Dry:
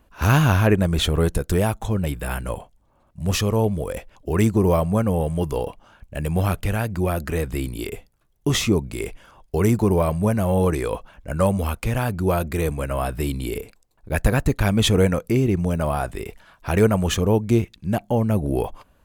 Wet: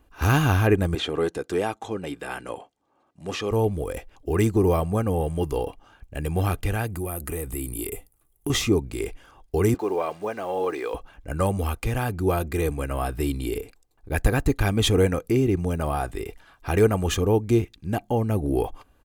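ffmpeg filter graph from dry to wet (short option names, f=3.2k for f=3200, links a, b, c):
-filter_complex "[0:a]asettb=1/sr,asplit=3[a][b][c];[a]atrim=end=0.954[d];[b]atrim=start=0.95:end=3.51,asetpts=PTS-STARTPTS,afade=t=in:d=0.004:c=qsin,afade=t=out:st=2.556:d=0.004:c=qsin,highpass=240,lowpass=7.4k,acrossover=split=3600[e][f];[f]acompressor=threshold=-36dB:ratio=4:attack=1:release=60[g];[e][g]amix=inputs=2:normalize=0[h];[c]atrim=start=3.506[i];[d][h]acrossfade=d=0.004:c1=hsin:c2=qsin[j];[j][i]acrossfade=d=0.004:c1=qsin:c2=hsin,asettb=1/sr,asplit=3[k][l][m];[k]atrim=end=6.874[n];[l]atrim=start=6.87:end=8.5,asetpts=PTS-STARTPTS,afade=t=in:d=0.004:c=qsin,afade=t=out:st=1.626:d=0.004:c=qsin,highshelf=f=7.3k:t=q:w=1.5:g=11.5,bandreject=f=1.6k:w=9.3,acompressor=threshold=-25dB:ratio=3:attack=3.2:release=140:knee=1:detection=peak[o];[m]atrim=start=8.496[p];[n][o]acrossfade=d=0.004:c1=hsin:c2=qsin[q];[q][p]acrossfade=d=0.004:c1=qsin:c2=hsin,asettb=1/sr,asplit=3[r][s][t];[r]atrim=end=9.744[u];[s]atrim=start=9.74:end=10.94,asetpts=PTS-STARTPTS,afade=t=in:d=0.004:c=qsin,afade=t=out:st=1.196:d=0.004:c=qsin,highpass=440,lowpass=4.4k,acrusher=bits=7:mix=0:aa=0.5[v];[t]atrim=start=10.936[w];[u][v]acrossfade=d=0.004:c1=hsin:c2=qsin[x];[x][w]acrossfade=d=0.004:c1=qsin:c2=hsin,equalizer=f=280:t=o:w=0.29:g=5,aecho=1:1:2.5:0.38,volume=-3dB"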